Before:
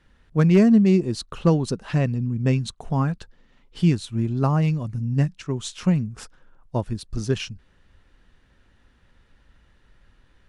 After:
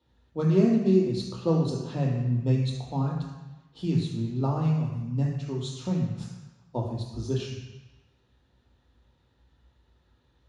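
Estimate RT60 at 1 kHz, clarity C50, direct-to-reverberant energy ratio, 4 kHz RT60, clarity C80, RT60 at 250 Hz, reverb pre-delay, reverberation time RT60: 1.1 s, 3.0 dB, -2.0 dB, 1.1 s, 5.0 dB, 1.1 s, 3 ms, 1.1 s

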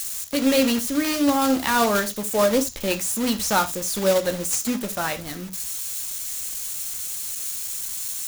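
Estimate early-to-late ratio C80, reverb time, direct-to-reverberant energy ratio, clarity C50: 24.0 dB, no single decay rate, 7.5 dB, 15.5 dB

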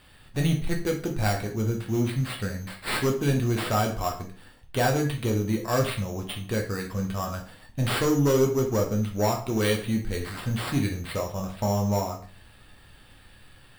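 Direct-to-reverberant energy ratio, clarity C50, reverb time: 1.0 dB, 8.5 dB, 0.45 s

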